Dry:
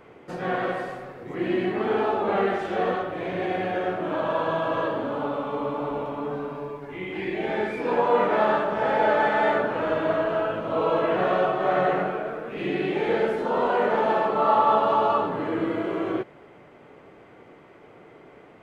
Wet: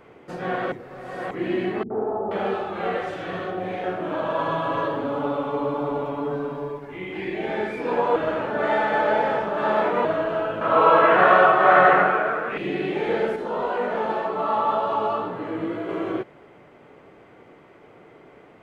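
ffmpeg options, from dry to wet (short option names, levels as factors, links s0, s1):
-filter_complex "[0:a]asettb=1/sr,asplit=3[s0][s1][s2];[s0]atrim=end=1.834[s3];[s1]atrim=start=1.83:end=3.84,asetpts=PTS-STARTPTS,afade=t=in:d=0.004:c=qsin,afade=t=out:st=2.006:d=0.004:c=qsin,acrossover=split=280|1000[s4][s5][s6];[s5]adelay=70[s7];[s6]adelay=480[s8];[s4][s7][s8]amix=inputs=3:normalize=0,atrim=end_sample=88641[s9];[s2]atrim=start=3.836[s10];[s3][s9]acrossfade=d=0.004:c1=hsin:c2=qsin[s11];[s11][s10]acrossfade=d=0.004:c1=qsin:c2=hsin,asettb=1/sr,asplit=3[s12][s13][s14];[s12]atrim=end=4.384[s15];[s13]atrim=start=4.38:end=6.79,asetpts=PTS-STARTPTS,afade=t=in:d=0.004:c=qsin,afade=t=out:st=2.406:d=0.004:c=qsin,aecho=1:1:7.1:0.57,atrim=end_sample=106281[s16];[s14]atrim=start=6.786[s17];[s15][s16]acrossfade=d=0.004:c1=hsin:c2=qsin[s18];[s18][s17]acrossfade=d=0.004:c1=qsin:c2=hsin,asettb=1/sr,asplit=3[s19][s20][s21];[s19]atrim=end=10.614[s22];[s20]atrim=start=10.61:end=12.58,asetpts=PTS-STARTPTS,afade=t=in:d=0.004:c=qsin,afade=t=out:st=1.966:d=0.004:c=qsin,equalizer=f=1400:w=0.67:g=14[s23];[s21]atrim=start=12.576[s24];[s22][s23]acrossfade=d=0.004:c1=hsin:c2=qsin[s25];[s25][s24]acrossfade=d=0.004:c1=qsin:c2=hsin,asettb=1/sr,asplit=3[s26][s27][s28];[s26]atrim=end=13.364[s29];[s27]atrim=start=13.36:end=15.89,asetpts=PTS-STARTPTS,afade=t=in:d=0.004:c=qsin,afade=t=out:st=2.526:d=0.004:c=qsin,flanger=delay=16:depth=3:speed=2[s30];[s28]atrim=start=15.886[s31];[s29][s30]acrossfade=d=0.004:c1=hsin:c2=qsin[s32];[s32][s31]acrossfade=d=0.004:c1=qsin:c2=hsin,asplit=5[s33][s34][s35][s36][s37];[s33]atrim=end=0.722[s38];[s34]atrim=start=0.718:end=1.312,asetpts=PTS-STARTPTS,areverse[s39];[s35]atrim=start=1.308:end=8.162[s40];[s36]atrim=start=8.158:end=10.052,asetpts=PTS-STARTPTS,areverse[s41];[s37]atrim=start=10.048[s42];[s38][s39]acrossfade=d=0.004:c1=hsin:c2=hsin[s43];[s43][s40]acrossfade=d=0.004:c1=hsin:c2=hsin[s44];[s44][s41]acrossfade=d=0.004:c1=hsin:c2=hsin[s45];[s45][s42]acrossfade=d=0.004:c1=hsin:c2=hsin"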